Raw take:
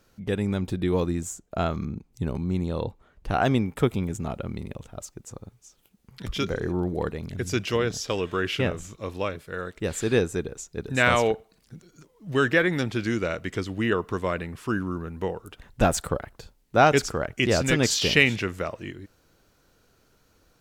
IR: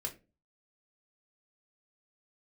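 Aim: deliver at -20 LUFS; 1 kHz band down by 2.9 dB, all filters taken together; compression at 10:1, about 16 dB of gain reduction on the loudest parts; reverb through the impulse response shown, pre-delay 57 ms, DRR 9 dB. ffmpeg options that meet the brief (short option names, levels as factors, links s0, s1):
-filter_complex "[0:a]equalizer=f=1000:t=o:g=-4.5,acompressor=threshold=0.0251:ratio=10,asplit=2[s0][s1];[1:a]atrim=start_sample=2205,adelay=57[s2];[s1][s2]afir=irnorm=-1:irlink=0,volume=0.355[s3];[s0][s3]amix=inputs=2:normalize=0,volume=7.08"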